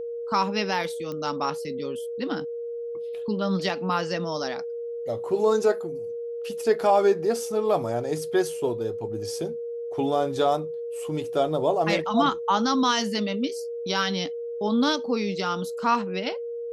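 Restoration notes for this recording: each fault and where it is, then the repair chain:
tone 470 Hz -30 dBFS
1.12 pop -22 dBFS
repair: de-click; notch 470 Hz, Q 30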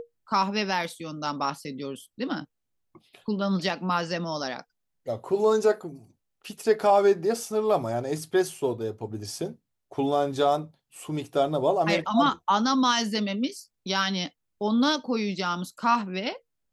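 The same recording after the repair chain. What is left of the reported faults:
none

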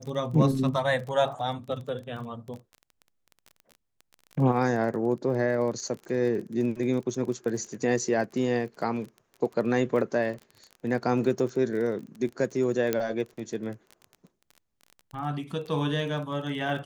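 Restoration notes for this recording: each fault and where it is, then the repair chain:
crackle 24/s -35 dBFS
12.93 pop -11 dBFS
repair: de-click

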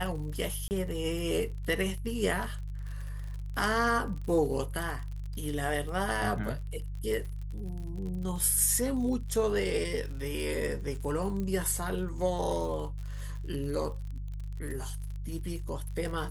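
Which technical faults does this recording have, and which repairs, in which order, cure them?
crackle 53/s -38 dBFS
hum 50 Hz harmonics 3 -37 dBFS
0.68–0.71 gap 29 ms
11.4 pop -24 dBFS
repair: de-click; de-hum 50 Hz, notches 3; interpolate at 0.68, 29 ms

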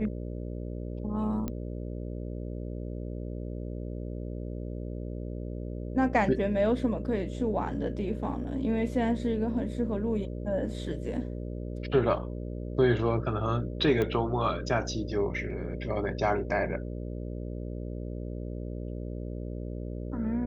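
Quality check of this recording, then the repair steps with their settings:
buzz 60 Hz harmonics 10 -36 dBFS
1.48 pop -20 dBFS
14.02 pop -18 dBFS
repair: de-click; de-hum 60 Hz, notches 10

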